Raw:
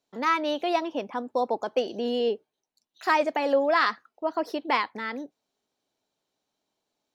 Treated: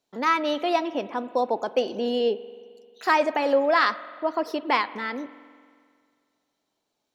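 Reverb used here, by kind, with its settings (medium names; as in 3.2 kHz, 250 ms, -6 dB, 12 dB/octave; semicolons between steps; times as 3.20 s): spring tank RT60 2 s, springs 44 ms, chirp 70 ms, DRR 15.5 dB; trim +2 dB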